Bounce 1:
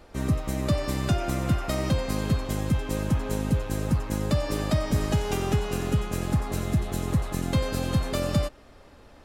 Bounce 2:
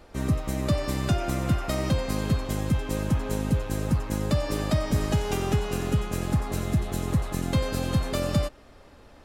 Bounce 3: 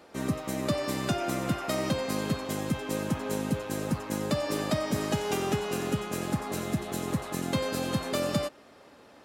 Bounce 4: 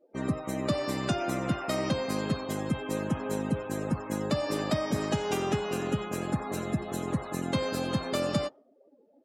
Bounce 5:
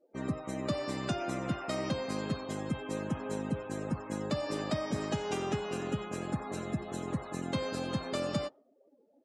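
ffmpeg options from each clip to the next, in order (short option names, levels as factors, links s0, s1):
-af anull
-af "highpass=190"
-af "afftdn=nr=35:nf=-44"
-af "lowpass=f=9500:w=0.5412,lowpass=f=9500:w=1.3066,volume=0.596"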